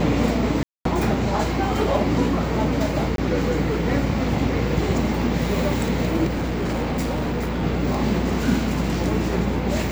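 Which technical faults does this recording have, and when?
buzz 60 Hz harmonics 24 -27 dBFS
0.63–0.85 gap 0.223 s
3.16–3.18 gap 22 ms
6.26–7.64 clipped -20.5 dBFS

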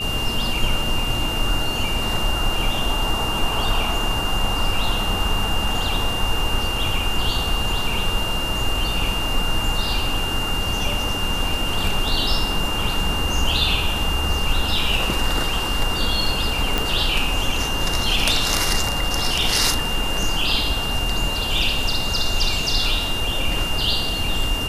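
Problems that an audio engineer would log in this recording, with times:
tone 2800 Hz -25 dBFS
16.78 pop

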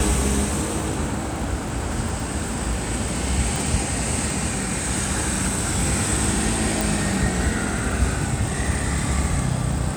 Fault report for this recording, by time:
crackle 130/s -29 dBFS
3.56 pop
6.81 pop

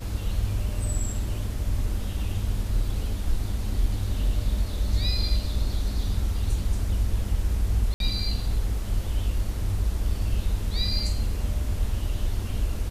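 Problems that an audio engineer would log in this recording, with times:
7.94–8 gap 62 ms

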